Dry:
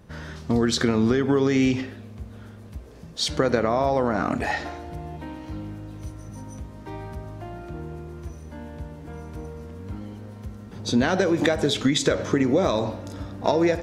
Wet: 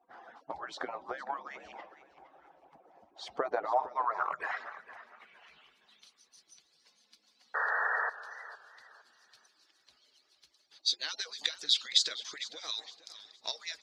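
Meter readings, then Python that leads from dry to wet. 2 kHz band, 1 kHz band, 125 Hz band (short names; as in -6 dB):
-5.0 dB, -6.0 dB, under -40 dB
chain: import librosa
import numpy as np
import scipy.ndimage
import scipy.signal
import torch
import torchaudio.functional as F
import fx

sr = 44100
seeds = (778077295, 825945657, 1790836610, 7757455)

y = fx.hpss_only(x, sr, part='percussive')
y = fx.low_shelf(y, sr, hz=460.0, db=-5.5)
y = fx.spec_paint(y, sr, seeds[0], shape='noise', start_s=7.54, length_s=0.56, low_hz=400.0, high_hz=1900.0, level_db=-15.0)
y = fx.filter_sweep_bandpass(y, sr, from_hz=780.0, to_hz=4400.0, start_s=3.65, end_s=6.28, q=3.6)
y = fx.echo_warbled(y, sr, ms=460, feedback_pct=30, rate_hz=2.8, cents=102, wet_db=-15.5)
y = F.gain(torch.from_numpy(y), 5.5).numpy()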